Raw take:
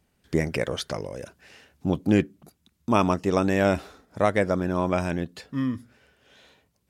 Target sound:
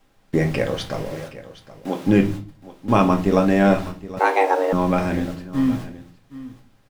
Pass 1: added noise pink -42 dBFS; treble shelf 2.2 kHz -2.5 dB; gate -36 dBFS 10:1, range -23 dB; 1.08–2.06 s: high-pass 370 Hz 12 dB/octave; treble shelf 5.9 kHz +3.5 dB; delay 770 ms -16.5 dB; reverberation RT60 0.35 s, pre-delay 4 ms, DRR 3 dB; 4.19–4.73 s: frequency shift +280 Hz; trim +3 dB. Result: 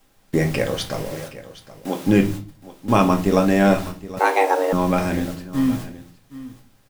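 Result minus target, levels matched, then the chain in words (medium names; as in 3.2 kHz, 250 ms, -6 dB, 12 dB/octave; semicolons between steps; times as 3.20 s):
8 kHz band +6.5 dB
added noise pink -42 dBFS; treble shelf 2.2 kHz -2.5 dB; gate -36 dBFS 10:1, range -23 dB; 1.08–2.06 s: high-pass 370 Hz 12 dB/octave; treble shelf 5.9 kHz -7.5 dB; delay 770 ms -16.5 dB; reverberation RT60 0.35 s, pre-delay 4 ms, DRR 3 dB; 4.19–4.73 s: frequency shift +280 Hz; trim +3 dB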